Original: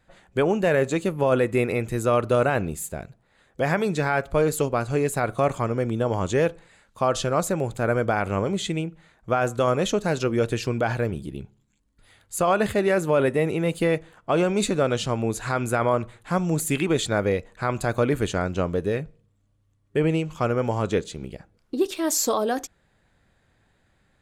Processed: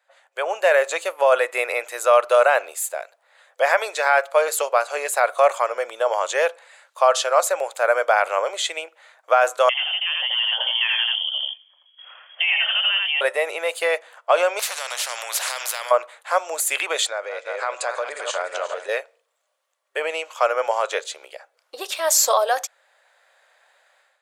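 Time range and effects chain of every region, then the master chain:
9.69–13.21 s: delay 83 ms -3 dB + compression 2.5:1, threshold -32 dBFS + frequency inversion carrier 3.3 kHz
14.59–15.91 s: hum notches 50/100/150/200/250/300/350/400 Hz + compression 3:1, threshold -24 dBFS + spectrum-flattening compressor 4:1
17.07–18.89 s: backward echo that repeats 179 ms, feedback 64%, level -9 dB + steep low-pass 9.5 kHz 72 dB/octave + compression 10:1, threshold -26 dBFS
whole clip: level rider gain up to 12 dB; elliptic high-pass 560 Hz, stop band 70 dB; trim -1.5 dB

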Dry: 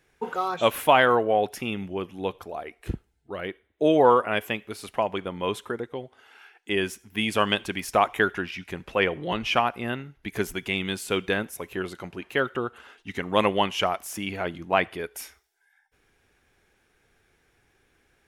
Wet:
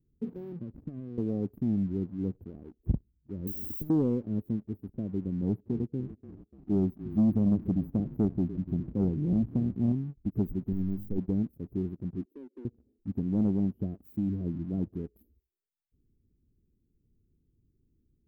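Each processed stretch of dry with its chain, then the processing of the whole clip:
0.52–1.18 s: boxcar filter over 45 samples + compression 10:1, threshold -34 dBFS
3.47–3.90 s: tilt EQ +4.5 dB/octave + compressor with a negative ratio -30 dBFS, ratio -0.5 + spectrum-flattening compressor 10:1
5.42–9.92 s: high-pass 70 Hz + tilt shelf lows +4 dB, about 640 Hz + frequency-shifting echo 293 ms, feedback 49%, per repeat -30 Hz, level -16 dB
10.72–11.18 s: partial rectifier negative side -7 dB + hum notches 50/100/150/200/250/300/350/400 Hz
12.25–12.65 s: steep high-pass 250 Hz 72 dB/octave + compression 1.5:1, threshold -57 dBFS
whole clip: inverse Chebyshev band-stop 1.1–8.3 kHz, stop band 70 dB; waveshaping leveller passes 1; trim +2.5 dB

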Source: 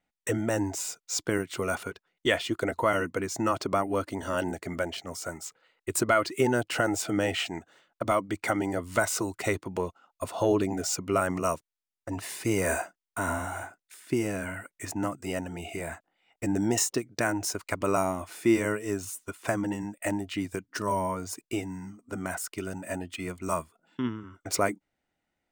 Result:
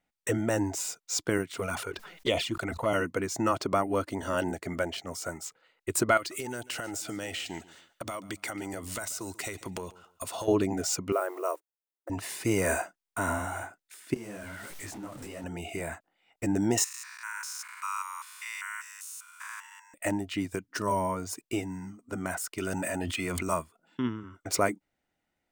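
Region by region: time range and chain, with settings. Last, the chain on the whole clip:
1.52–2.94 s: touch-sensitive flanger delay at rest 7.7 ms, full sweep at -21 dBFS + decay stretcher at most 67 dB/s
6.17–10.48 s: treble shelf 2.4 kHz +11.5 dB + compression 10:1, threshold -32 dBFS + feedback delay 140 ms, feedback 27%, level -19.5 dB
11.12–12.10 s: block-companded coder 5-bit + brick-wall FIR high-pass 310 Hz + peaking EQ 4.5 kHz -15 dB 2.7 oct
14.14–15.44 s: jump at every zero crossing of -35 dBFS + compression 4:1, threshold -35 dBFS + detune thickener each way 51 cents
16.84–19.94 s: spectrogram pixelated in time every 200 ms + steep high-pass 950 Hz 96 dB/octave + de-esser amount 50%
22.58–23.43 s: bass shelf 480 Hz -5 dB + level flattener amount 100%
whole clip: none

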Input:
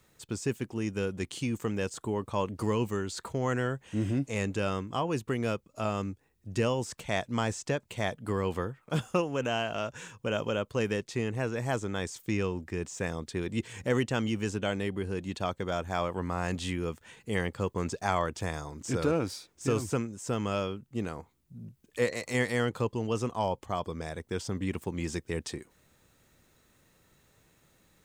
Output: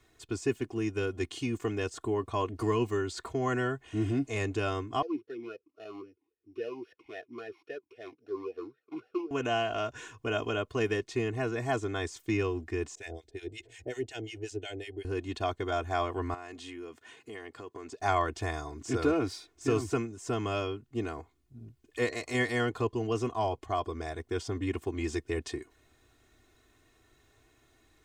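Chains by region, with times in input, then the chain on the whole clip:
5.02–9.31 s: sorted samples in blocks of 8 samples + talking filter e-u 3.7 Hz
12.95–15.05 s: harmonic tremolo 5.5 Hz, depth 100%, crossover 940 Hz + static phaser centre 480 Hz, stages 4
16.34–18.00 s: high-pass 180 Hz + compression 2.5:1, threshold -44 dBFS
whole clip: treble shelf 8.4 kHz -11.5 dB; comb 2.8 ms, depth 100%; trim -2 dB

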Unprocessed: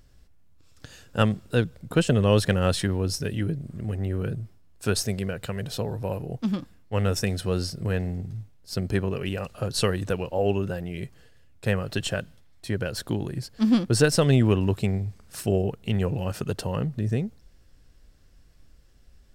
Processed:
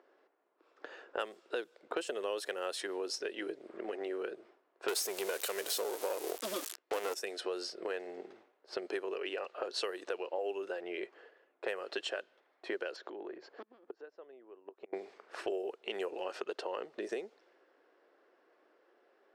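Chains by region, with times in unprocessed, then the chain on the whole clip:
4.88–7.14 s: zero-crossing glitches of -26.5 dBFS + waveshaping leveller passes 3
12.96–14.93 s: inverted gate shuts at -14 dBFS, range -34 dB + brick-wall FIR low-pass 7.6 kHz + compression 16:1, threshold -37 dBFS
whole clip: level-controlled noise filter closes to 1.3 kHz, open at -18.5 dBFS; elliptic high-pass 360 Hz, stop band 80 dB; compression 5:1, threshold -42 dBFS; trim +6 dB

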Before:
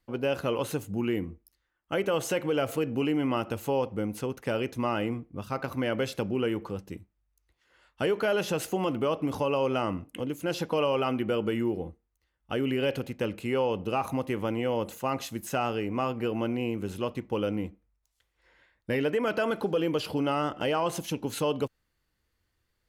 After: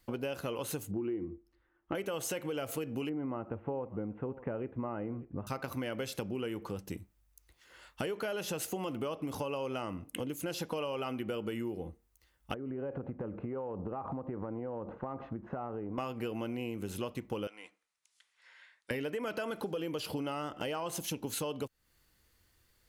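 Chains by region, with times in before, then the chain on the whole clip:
0.91–1.95 s: low-pass 1.7 kHz + peaking EQ 340 Hz +14 dB 0.26 oct + compression 2:1, threshold -22 dBFS
3.09–5.47 s: Gaussian low-pass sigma 5.5 samples + delay 590 ms -23.5 dB
12.54–15.98 s: low-pass 1.3 kHz 24 dB/octave + compression 4:1, threshold -36 dBFS
17.47–18.91 s: high-pass 1.2 kHz + peaking EQ 11 kHz -7.5 dB 1.5 oct + careless resampling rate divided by 2×, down none, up filtered
whole clip: treble shelf 5.2 kHz +8.5 dB; compression 5:1, threshold -41 dBFS; trim +5.5 dB

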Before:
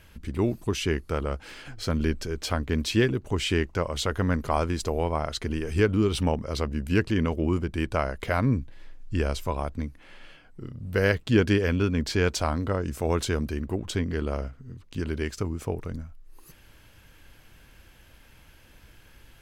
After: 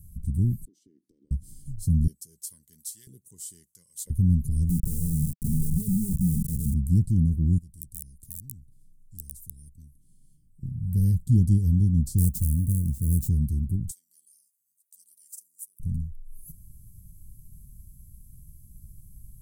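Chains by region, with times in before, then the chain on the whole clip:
0.65–1.31 s: Chebyshev high-pass 290 Hz, order 4 + distance through air 220 m + compression 16:1, threshold -40 dBFS
2.07–4.10 s: comb 2 ms, depth 30% + LFO high-pass saw up 1 Hz 640–1800 Hz
4.69–6.74 s: steep low-pass 810 Hz 48 dB/octave + static phaser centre 460 Hz, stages 8 + companded quantiser 2-bit
7.58–10.63 s: comb 2.6 ms, depth 34% + integer overflow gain 14.5 dB + spectrum-flattening compressor 2:1
12.18–13.29 s: self-modulated delay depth 0.14 ms + sample-rate reducer 11 kHz, jitter 20%
13.91–15.80 s: high-pass 1 kHz + differentiator
whole clip: elliptic band-stop 170–9100 Hz, stop band 60 dB; peaking EQ 2.3 kHz +11.5 dB 1.1 oct; trim +8 dB

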